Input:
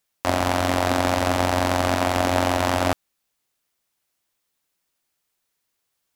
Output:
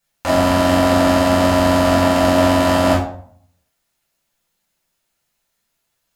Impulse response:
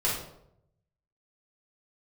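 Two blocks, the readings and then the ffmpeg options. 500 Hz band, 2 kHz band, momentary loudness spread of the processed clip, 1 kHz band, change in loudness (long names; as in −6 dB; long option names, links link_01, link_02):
+8.5 dB, +4.0 dB, 3 LU, +4.5 dB, +7.0 dB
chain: -filter_complex "[1:a]atrim=start_sample=2205,asetrate=61740,aresample=44100[link_01];[0:a][link_01]afir=irnorm=-1:irlink=0,volume=-1dB"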